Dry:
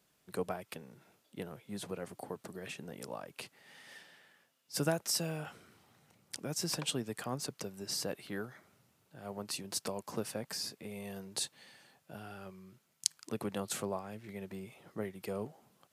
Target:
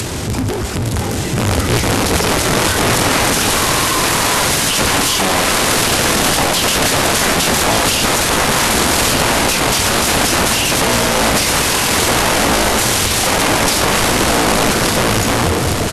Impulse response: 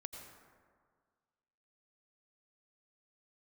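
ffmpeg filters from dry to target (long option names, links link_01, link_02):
-filter_complex "[0:a]aeval=exprs='val(0)+0.5*0.0841*sgn(val(0))':channel_layout=same,acrossover=split=80|310|1100[link_01][link_02][link_03][link_04];[link_01]acompressor=threshold=-54dB:ratio=4[link_05];[link_02]acompressor=threshold=-29dB:ratio=4[link_06];[link_03]acompressor=threshold=-32dB:ratio=4[link_07];[link_04]acompressor=threshold=-36dB:ratio=4[link_08];[link_05][link_06][link_07][link_08]amix=inputs=4:normalize=0,lowshelf=frequency=71:gain=7,dynaudnorm=framelen=610:gausssize=7:maxgain=9dB,aeval=exprs='(mod(10*val(0)+1,2)-1)/10':channel_layout=same,asetrate=25476,aresample=44100,atempo=1.73107,aecho=1:1:1172:0.447,asplit=2[link_09][link_10];[1:a]atrim=start_sample=2205,asetrate=74970,aresample=44100[link_11];[link_10][link_11]afir=irnorm=-1:irlink=0,volume=6dB[link_12];[link_09][link_12]amix=inputs=2:normalize=0,volume=6.5dB"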